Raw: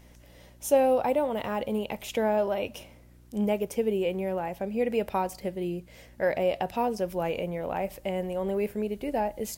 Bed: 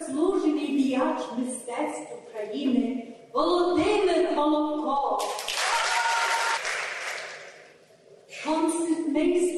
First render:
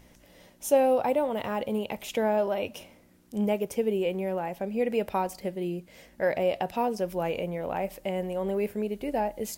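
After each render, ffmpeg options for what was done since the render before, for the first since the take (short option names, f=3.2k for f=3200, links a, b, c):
-af "bandreject=f=60:t=h:w=4,bandreject=f=120:t=h:w=4"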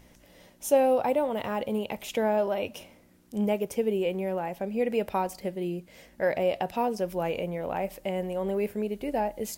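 -af anull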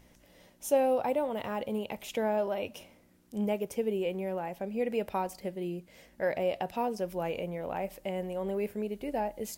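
-af "volume=-4dB"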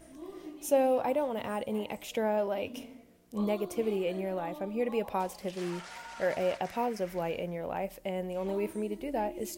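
-filter_complex "[1:a]volume=-21dB[a];[0:a][a]amix=inputs=2:normalize=0"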